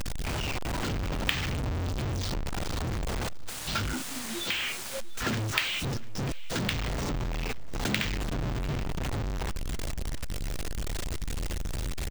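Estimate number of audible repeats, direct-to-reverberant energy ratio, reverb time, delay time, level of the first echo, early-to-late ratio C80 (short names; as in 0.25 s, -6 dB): 2, none, none, 0.697 s, -19.5 dB, none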